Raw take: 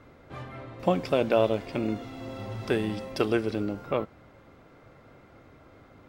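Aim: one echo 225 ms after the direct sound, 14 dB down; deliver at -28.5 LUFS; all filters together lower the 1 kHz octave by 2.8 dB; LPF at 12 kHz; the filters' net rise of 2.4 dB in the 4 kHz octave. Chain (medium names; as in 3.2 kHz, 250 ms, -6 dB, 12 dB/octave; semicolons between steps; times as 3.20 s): low-pass 12 kHz; peaking EQ 1 kHz -4.5 dB; peaking EQ 4 kHz +3.5 dB; delay 225 ms -14 dB; trim +0.5 dB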